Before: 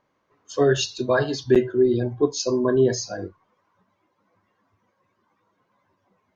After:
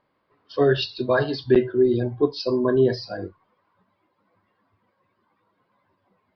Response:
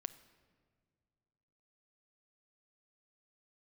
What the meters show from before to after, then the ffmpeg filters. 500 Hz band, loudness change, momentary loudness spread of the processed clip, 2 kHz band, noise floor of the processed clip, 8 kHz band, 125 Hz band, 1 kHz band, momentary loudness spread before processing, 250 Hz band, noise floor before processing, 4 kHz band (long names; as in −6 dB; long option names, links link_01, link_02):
0.0 dB, 0.0 dB, 14 LU, 0.0 dB, −72 dBFS, can't be measured, 0.0 dB, 0.0 dB, 13 LU, 0.0 dB, −72 dBFS, −1.0 dB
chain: -af "aresample=11025,aresample=44100"